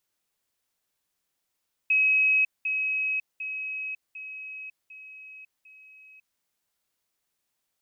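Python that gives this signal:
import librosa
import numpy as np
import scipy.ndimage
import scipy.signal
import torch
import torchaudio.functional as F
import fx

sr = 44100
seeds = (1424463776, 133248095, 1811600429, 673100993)

y = fx.level_ladder(sr, hz=2550.0, from_db=-18.5, step_db=-6.0, steps=6, dwell_s=0.55, gap_s=0.2)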